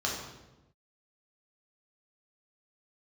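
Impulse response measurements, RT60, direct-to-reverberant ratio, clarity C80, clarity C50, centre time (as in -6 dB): 1.0 s, -3.5 dB, 5.0 dB, 2.5 dB, 51 ms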